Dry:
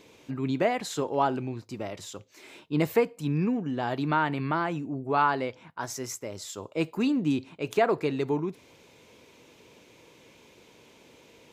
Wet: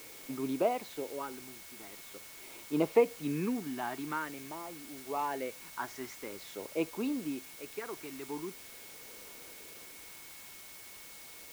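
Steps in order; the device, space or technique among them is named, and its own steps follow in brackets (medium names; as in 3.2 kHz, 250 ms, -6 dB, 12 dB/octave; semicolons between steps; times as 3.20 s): shortwave radio (band-pass 290–2600 Hz; tremolo 0.32 Hz, depth 77%; LFO notch sine 0.46 Hz 500–1900 Hz; whistle 2.2 kHz -58 dBFS; white noise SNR 13 dB)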